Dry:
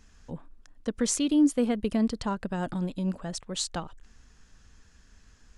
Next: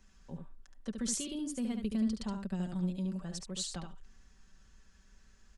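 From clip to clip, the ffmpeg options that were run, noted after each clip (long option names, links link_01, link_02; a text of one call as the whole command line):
ffmpeg -i in.wav -filter_complex "[0:a]aecho=1:1:5.2:0.54,acrossover=split=280|3000[link_01][link_02][link_03];[link_02]acompressor=threshold=-43dB:ratio=2[link_04];[link_01][link_04][link_03]amix=inputs=3:normalize=0,aecho=1:1:72:0.501,volume=-7.5dB" out.wav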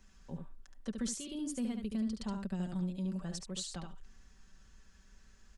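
ffmpeg -i in.wav -af "alimiter=level_in=5dB:limit=-24dB:level=0:latency=1:release=404,volume=-5dB,volume=1dB" out.wav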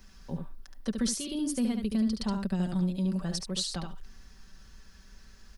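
ffmpeg -i in.wav -af "aexciter=amount=1.4:drive=3.5:freq=4100,volume=7.5dB" out.wav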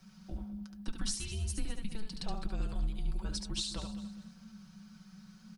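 ffmpeg -i in.wav -af "afreqshift=-220,flanger=delay=4.4:depth=2:regen=-70:speed=0.68:shape=sinusoidal,aecho=1:1:204|408|612:0.2|0.0678|0.0231" out.wav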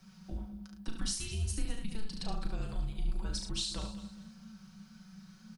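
ffmpeg -i in.wav -filter_complex "[0:a]asplit=2[link_01][link_02];[link_02]adelay=36,volume=-6.5dB[link_03];[link_01][link_03]amix=inputs=2:normalize=0" out.wav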